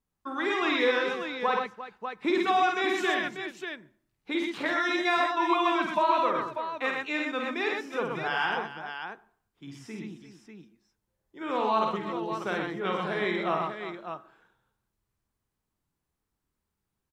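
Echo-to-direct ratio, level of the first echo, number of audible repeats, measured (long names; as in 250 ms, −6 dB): 0.5 dB, −4.5 dB, 4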